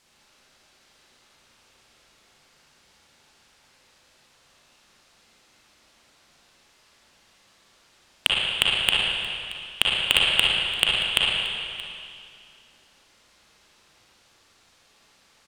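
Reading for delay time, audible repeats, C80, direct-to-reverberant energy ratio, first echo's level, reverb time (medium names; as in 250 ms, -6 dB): 627 ms, 1, -0.5 dB, -5.0 dB, -18.5 dB, 2.4 s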